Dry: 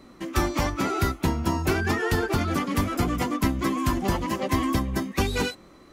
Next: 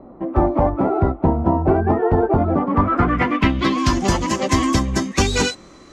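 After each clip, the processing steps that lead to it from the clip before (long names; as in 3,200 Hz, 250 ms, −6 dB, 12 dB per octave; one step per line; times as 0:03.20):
low-pass filter sweep 720 Hz → 6,900 Hz, 0:02.56–0:04.04
level +6.5 dB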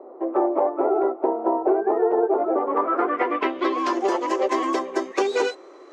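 elliptic high-pass filter 380 Hz, stop band 60 dB
spectral tilt −4.5 dB per octave
downward compressor 3 to 1, threshold −18 dBFS, peak gain reduction 7.5 dB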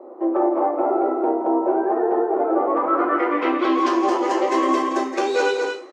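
loudspeakers that aren't time-aligned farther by 57 metres −12 dB, 77 metres −6 dB
brickwall limiter −13.5 dBFS, peak gain reduction 6.5 dB
reverb whose tail is shaped and stops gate 140 ms falling, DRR 1 dB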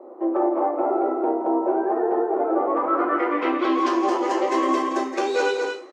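high-pass filter 50 Hz
level −2 dB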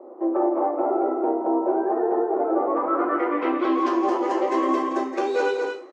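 high-shelf EQ 2,200 Hz −8.5 dB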